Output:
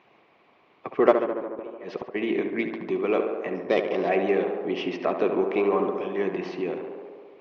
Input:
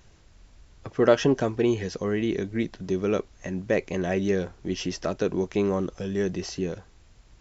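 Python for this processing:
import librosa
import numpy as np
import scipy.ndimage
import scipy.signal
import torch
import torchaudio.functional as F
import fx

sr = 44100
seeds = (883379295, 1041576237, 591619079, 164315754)

p1 = fx.sample_sort(x, sr, block=8, at=(3.54, 4.08), fade=0.02)
p2 = fx.cabinet(p1, sr, low_hz=180.0, low_slope=24, high_hz=3400.0, hz=(190.0, 380.0, 740.0, 1100.0, 1500.0, 2300.0), db=(-3, 6, 9, 10, -4, 9))
p3 = 10.0 ** (-16.0 / 20.0) * np.tanh(p2 / 10.0 ** (-16.0 / 20.0))
p4 = p2 + (p3 * librosa.db_to_amplitude(-7.0))
p5 = fx.gate_flip(p4, sr, shuts_db=-15.0, range_db=-24, at=(1.11, 2.14), fade=0.02)
p6 = p5 + fx.echo_tape(p5, sr, ms=71, feedback_pct=85, wet_db=-5.0, lp_hz=2500.0, drive_db=2.0, wow_cents=30, dry=0)
p7 = fx.hpss(p6, sr, part='harmonic', gain_db=-7)
y = p7 * librosa.db_to_amplitude(-1.5)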